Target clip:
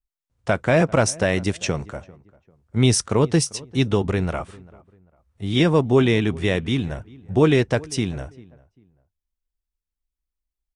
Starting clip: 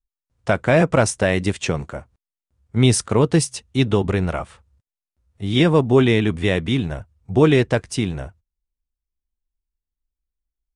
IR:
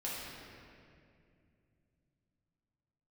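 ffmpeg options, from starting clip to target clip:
-filter_complex "[0:a]adynamicequalizer=threshold=0.00501:dfrequency=5700:dqfactor=4.9:tfrequency=5700:tqfactor=4.9:attack=5:release=100:ratio=0.375:range=3.5:mode=boostabove:tftype=bell,asplit=2[link_01][link_02];[link_02]adelay=395,lowpass=frequency=1500:poles=1,volume=-22dB,asplit=2[link_03][link_04];[link_04]adelay=395,lowpass=frequency=1500:poles=1,volume=0.32[link_05];[link_03][link_05]amix=inputs=2:normalize=0[link_06];[link_01][link_06]amix=inputs=2:normalize=0,volume=-2dB"

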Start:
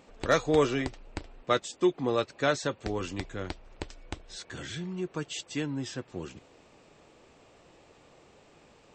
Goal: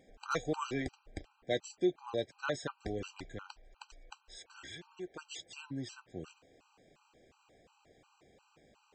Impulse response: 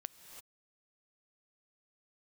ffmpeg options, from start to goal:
-filter_complex "[0:a]asettb=1/sr,asplit=3[link_01][link_02][link_03];[link_01]atrim=end=3.424[link_04];[link_02]atrim=start=3.42:end=5.26,asetpts=PTS-STARTPTS,afade=type=in:duration=0.004:curve=qsin,afade=type=out:start_time=1.836:duration=0.004:curve=qsin,equalizer=frequency=150:width_type=o:width=1.3:gain=-12.5[link_05];[link_03]atrim=start=5.256[link_06];[link_04][link_05]acrossfade=duration=0.004:curve1=hsin:curve2=qsin[link_07];[link_07][link_06]acrossfade=duration=0.004:curve1=qsin:curve2=hsin,afftfilt=real='re*gt(sin(2*PI*2.8*pts/sr)*(1-2*mod(floor(b*sr/1024/790),2)),0)':imag='im*gt(sin(2*PI*2.8*pts/sr)*(1-2*mod(floor(b*sr/1024/790),2)),0)':win_size=1024:overlap=0.75,volume=-5.5dB"

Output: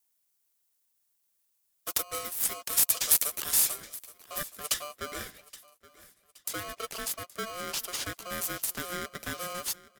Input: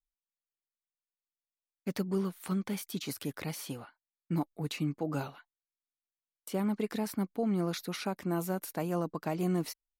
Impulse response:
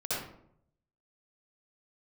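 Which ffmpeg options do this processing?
-filter_complex "[0:a]asetnsamples=nb_out_samples=441:pad=0,asendcmd='4.74 highshelf g -2.5',highshelf=frequency=6300:gain=10.5,acrossover=split=330|3000[link_01][link_02][link_03];[link_01]acompressor=threshold=-43dB:ratio=2[link_04];[link_04][link_02][link_03]amix=inputs=3:normalize=0,bass=frequency=250:gain=-9,treble=frequency=4000:gain=15,aecho=1:1:822|1644|2466:0.106|0.0424|0.0169,aeval=exprs='val(0)*sgn(sin(2*PI*890*n/s))':channel_layout=same,volume=-1dB"

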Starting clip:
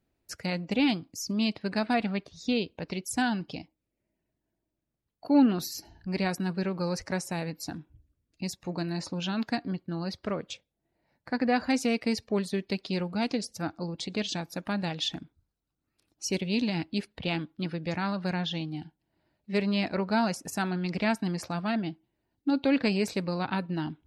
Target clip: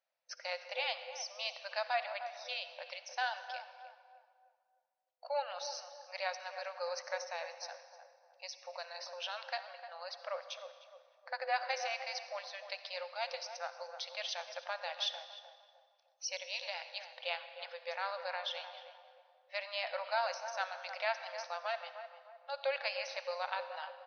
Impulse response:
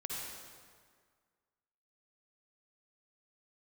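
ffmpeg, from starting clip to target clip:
-filter_complex "[0:a]asplit=2[link_01][link_02];[link_02]adelay=305,lowpass=frequency=1000:poles=1,volume=-7.5dB,asplit=2[link_03][link_04];[link_04]adelay=305,lowpass=frequency=1000:poles=1,volume=0.45,asplit=2[link_05][link_06];[link_06]adelay=305,lowpass=frequency=1000:poles=1,volume=0.45,asplit=2[link_07][link_08];[link_08]adelay=305,lowpass=frequency=1000:poles=1,volume=0.45,asplit=2[link_09][link_10];[link_10]adelay=305,lowpass=frequency=1000:poles=1,volume=0.45[link_11];[link_01][link_03][link_05][link_07][link_09][link_11]amix=inputs=6:normalize=0,asplit=2[link_12][link_13];[1:a]atrim=start_sample=2205[link_14];[link_13][link_14]afir=irnorm=-1:irlink=0,volume=-9dB[link_15];[link_12][link_15]amix=inputs=2:normalize=0,afftfilt=real='re*between(b*sr/4096,500,6300)':imag='im*between(b*sr/4096,500,6300)':win_size=4096:overlap=0.75,volume=-6.5dB"

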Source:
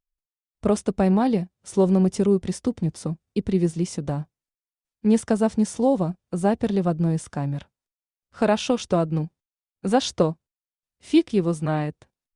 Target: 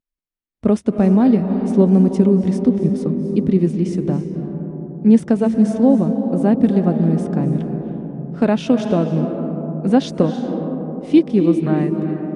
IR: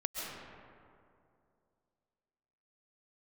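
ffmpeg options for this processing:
-filter_complex "[0:a]equalizer=frequency=125:width_type=o:width=1:gain=4,equalizer=frequency=250:width_type=o:width=1:gain=11,equalizer=frequency=500:width_type=o:width=1:gain=3,equalizer=frequency=2000:width_type=o:width=1:gain=4,equalizer=frequency=8000:width_type=o:width=1:gain=-6,asplit=2[link_01][link_02];[1:a]atrim=start_sample=2205,asetrate=22050,aresample=44100[link_03];[link_02][link_03]afir=irnorm=-1:irlink=0,volume=-9.5dB[link_04];[link_01][link_04]amix=inputs=2:normalize=0,volume=-6dB"

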